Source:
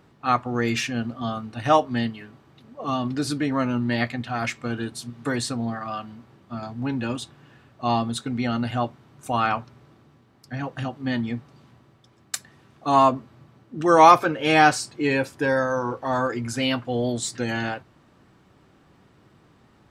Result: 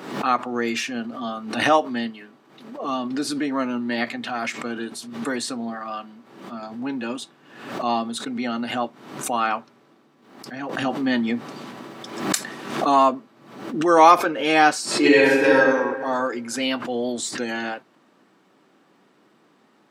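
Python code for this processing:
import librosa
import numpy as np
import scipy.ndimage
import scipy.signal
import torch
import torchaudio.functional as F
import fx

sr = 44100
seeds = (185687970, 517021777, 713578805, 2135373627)

y = fx.env_flatten(x, sr, amount_pct=50, at=(10.69, 13.03))
y = fx.reverb_throw(y, sr, start_s=14.85, length_s=0.69, rt60_s=1.4, drr_db=-9.0)
y = scipy.signal.sosfilt(scipy.signal.butter(4, 210.0, 'highpass', fs=sr, output='sos'), y)
y = fx.pre_swell(y, sr, db_per_s=72.0)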